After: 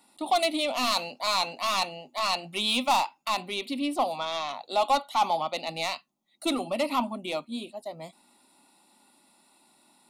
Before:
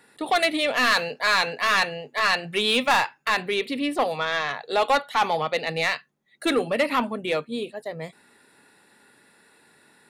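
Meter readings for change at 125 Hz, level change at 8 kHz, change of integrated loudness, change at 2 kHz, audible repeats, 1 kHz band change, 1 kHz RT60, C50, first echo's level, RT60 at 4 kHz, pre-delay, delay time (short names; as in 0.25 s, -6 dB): -8.0 dB, -0.5 dB, -4.5 dB, -11.5 dB, none, -2.0 dB, none, none, none, none, none, none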